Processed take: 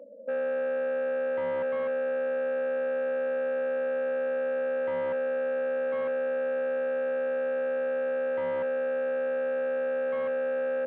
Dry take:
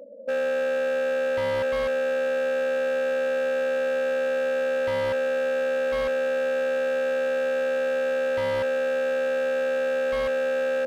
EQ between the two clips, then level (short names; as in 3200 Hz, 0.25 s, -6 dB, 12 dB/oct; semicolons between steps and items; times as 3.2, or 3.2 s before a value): Gaussian blur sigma 3.9 samples; HPF 150 Hz 24 dB/oct; -3.5 dB